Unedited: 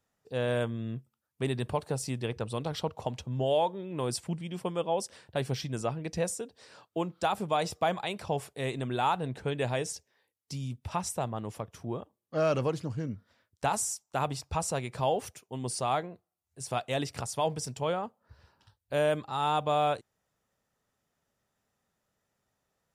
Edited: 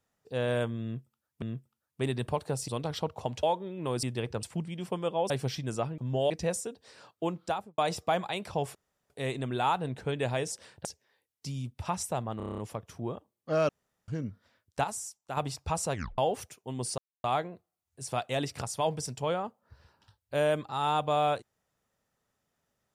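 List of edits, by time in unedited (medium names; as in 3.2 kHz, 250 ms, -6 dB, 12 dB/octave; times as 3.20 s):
0.83–1.42 s: loop, 2 plays
2.09–2.49 s: move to 4.16 s
3.24–3.56 s: move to 6.04 s
5.03–5.36 s: move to 9.91 s
7.14–7.52 s: studio fade out
8.49 s: insert room tone 0.35 s
11.43 s: stutter 0.03 s, 8 plays
12.54–12.93 s: room tone
13.69–14.22 s: gain -6.5 dB
14.78 s: tape stop 0.25 s
15.83 s: insert silence 0.26 s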